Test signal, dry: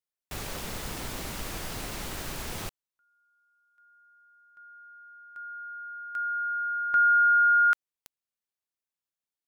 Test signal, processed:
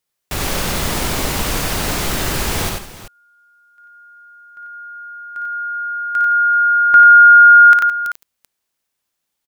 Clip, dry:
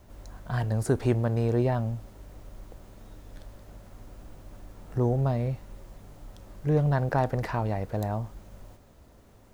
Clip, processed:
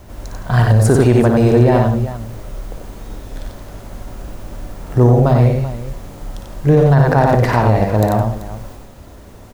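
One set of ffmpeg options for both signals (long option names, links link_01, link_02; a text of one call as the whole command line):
ffmpeg -i in.wav -af "aecho=1:1:57|92|162|167|386:0.422|0.668|0.133|0.158|0.188,alimiter=level_in=15.5dB:limit=-1dB:release=50:level=0:latency=1,volume=-1.5dB" out.wav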